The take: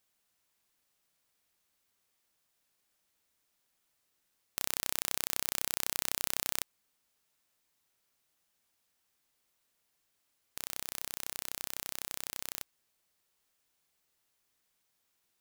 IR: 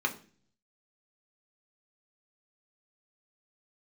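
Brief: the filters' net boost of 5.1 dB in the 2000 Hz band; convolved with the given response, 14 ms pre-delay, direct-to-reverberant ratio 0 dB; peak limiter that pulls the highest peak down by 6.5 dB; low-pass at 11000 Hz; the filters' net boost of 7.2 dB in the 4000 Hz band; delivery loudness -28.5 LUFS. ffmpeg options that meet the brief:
-filter_complex "[0:a]lowpass=11k,equalizer=f=2k:t=o:g=4,equalizer=f=4k:t=o:g=8,alimiter=limit=-12.5dB:level=0:latency=1,asplit=2[a][b];[1:a]atrim=start_sample=2205,adelay=14[c];[b][c]afir=irnorm=-1:irlink=0,volume=-8dB[d];[a][d]amix=inputs=2:normalize=0,volume=8.5dB"

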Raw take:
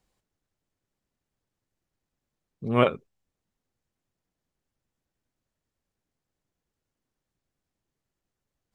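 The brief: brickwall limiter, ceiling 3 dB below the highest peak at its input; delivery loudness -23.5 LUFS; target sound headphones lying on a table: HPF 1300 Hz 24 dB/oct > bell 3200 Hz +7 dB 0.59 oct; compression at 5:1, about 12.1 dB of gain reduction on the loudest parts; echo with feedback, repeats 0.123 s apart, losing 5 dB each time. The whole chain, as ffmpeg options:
-af "acompressor=threshold=-28dB:ratio=5,alimiter=limit=-20dB:level=0:latency=1,highpass=f=1.3k:w=0.5412,highpass=f=1.3k:w=1.3066,equalizer=f=3.2k:t=o:w=0.59:g=7,aecho=1:1:123|246|369|492|615|738|861:0.562|0.315|0.176|0.0988|0.0553|0.031|0.0173,volume=22.5dB"

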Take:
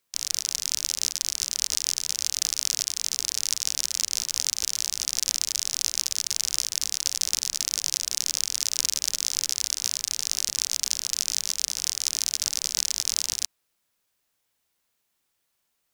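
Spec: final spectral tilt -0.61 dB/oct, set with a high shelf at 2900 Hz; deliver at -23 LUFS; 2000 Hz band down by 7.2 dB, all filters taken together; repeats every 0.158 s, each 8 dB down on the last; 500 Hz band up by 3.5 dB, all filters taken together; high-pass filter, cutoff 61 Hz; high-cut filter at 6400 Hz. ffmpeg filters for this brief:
-af "highpass=61,lowpass=6.4k,equalizer=f=500:t=o:g=5,equalizer=f=2k:t=o:g=-7.5,highshelf=f=2.9k:g=-4.5,aecho=1:1:158|316|474|632|790:0.398|0.159|0.0637|0.0255|0.0102,volume=8dB"

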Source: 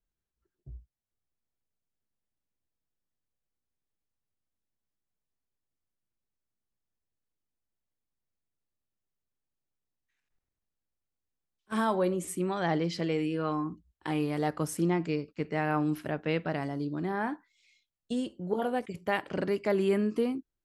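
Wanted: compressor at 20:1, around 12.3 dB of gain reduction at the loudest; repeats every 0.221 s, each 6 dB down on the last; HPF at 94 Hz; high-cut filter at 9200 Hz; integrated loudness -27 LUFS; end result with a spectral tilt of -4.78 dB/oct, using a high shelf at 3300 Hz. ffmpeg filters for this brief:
-af "highpass=94,lowpass=9.2k,highshelf=f=3.3k:g=-9,acompressor=threshold=-35dB:ratio=20,aecho=1:1:221|442|663|884|1105|1326:0.501|0.251|0.125|0.0626|0.0313|0.0157,volume=13dB"

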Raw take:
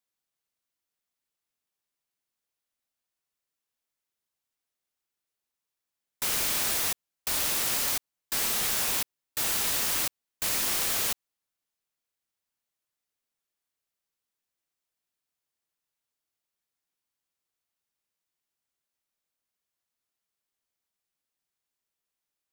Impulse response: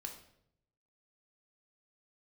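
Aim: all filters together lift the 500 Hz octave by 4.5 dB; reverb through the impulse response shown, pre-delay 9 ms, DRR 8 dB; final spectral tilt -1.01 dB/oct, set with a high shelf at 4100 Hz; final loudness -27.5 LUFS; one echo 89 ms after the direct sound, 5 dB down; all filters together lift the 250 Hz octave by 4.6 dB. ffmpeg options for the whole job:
-filter_complex "[0:a]equalizer=f=250:t=o:g=4.5,equalizer=f=500:t=o:g=4.5,highshelf=f=4.1k:g=-3.5,aecho=1:1:89:0.562,asplit=2[a][b];[1:a]atrim=start_sample=2205,adelay=9[c];[b][c]afir=irnorm=-1:irlink=0,volume=-5dB[d];[a][d]amix=inputs=2:normalize=0,volume=-0.5dB"

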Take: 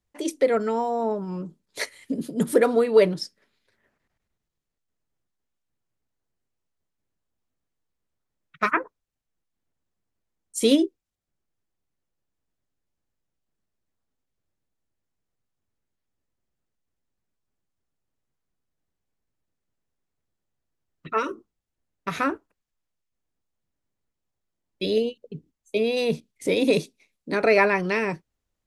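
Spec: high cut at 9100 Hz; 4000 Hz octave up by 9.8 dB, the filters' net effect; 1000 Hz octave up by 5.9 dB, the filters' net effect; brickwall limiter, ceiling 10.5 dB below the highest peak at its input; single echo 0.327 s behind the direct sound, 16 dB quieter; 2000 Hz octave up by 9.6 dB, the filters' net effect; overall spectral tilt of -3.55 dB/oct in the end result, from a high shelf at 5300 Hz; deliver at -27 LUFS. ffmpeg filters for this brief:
-af "lowpass=9.1k,equalizer=f=1k:t=o:g=4.5,equalizer=f=2k:t=o:g=8,equalizer=f=4k:t=o:g=8,highshelf=f=5.3k:g=3,alimiter=limit=-10dB:level=0:latency=1,aecho=1:1:327:0.158,volume=-4dB"

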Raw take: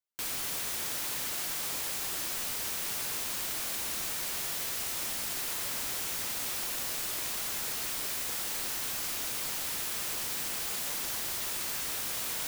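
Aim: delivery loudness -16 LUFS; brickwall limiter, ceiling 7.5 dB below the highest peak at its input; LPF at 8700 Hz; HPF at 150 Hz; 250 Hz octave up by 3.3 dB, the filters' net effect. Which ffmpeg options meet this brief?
-af "highpass=150,lowpass=8.7k,equalizer=f=250:t=o:g=5,volume=23.5dB,alimiter=limit=-9dB:level=0:latency=1"

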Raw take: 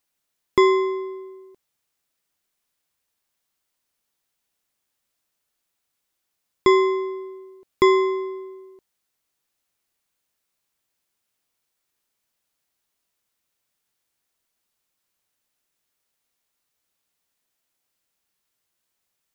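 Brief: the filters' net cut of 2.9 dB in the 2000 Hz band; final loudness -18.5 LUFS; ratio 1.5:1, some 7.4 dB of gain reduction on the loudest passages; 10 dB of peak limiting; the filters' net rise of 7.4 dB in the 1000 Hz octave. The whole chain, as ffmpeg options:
-af "equalizer=f=1k:t=o:g=8.5,equalizer=f=2k:t=o:g=-4.5,acompressor=threshold=-29dB:ratio=1.5,volume=10.5dB,alimiter=limit=-7dB:level=0:latency=1"

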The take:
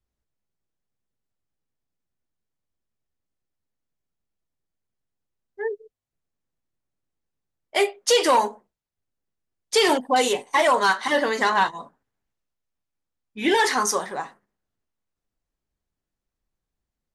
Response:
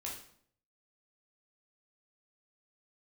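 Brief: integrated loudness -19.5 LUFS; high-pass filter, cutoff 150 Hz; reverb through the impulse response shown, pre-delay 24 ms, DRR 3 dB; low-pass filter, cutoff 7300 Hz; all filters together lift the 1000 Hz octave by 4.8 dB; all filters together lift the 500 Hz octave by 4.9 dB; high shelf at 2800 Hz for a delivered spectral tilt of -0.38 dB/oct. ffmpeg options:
-filter_complex "[0:a]highpass=150,lowpass=7.3k,equalizer=f=500:t=o:g=5,equalizer=f=1k:t=o:g=5,highshelf=f=2.8k:g=-7.5,asplit=2[a][b];[1:a]atrim=start_sample=2205,adelay=24[c];[b][c]afir=irnorm=-1:irlink=0,volume=-2.5dB[d];[a][d]amix=inputs=2:normalize=0,volume=-2.5dB"

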